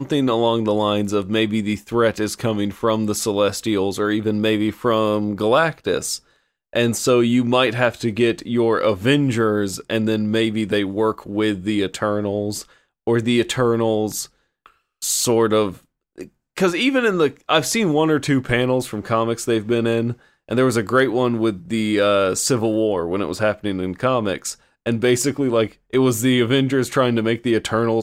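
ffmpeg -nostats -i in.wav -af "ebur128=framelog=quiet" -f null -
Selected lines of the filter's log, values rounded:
Integrated loudness:
  I:         -19.7 LUFS
  Threshold: -29.9 LUFS
Loudness range:
  LRA:         2.6 LU
  Threshold: -40.0 LUFS
  LRA low:   -21.5 LUFS
  LRA high:  -18.8 LUFS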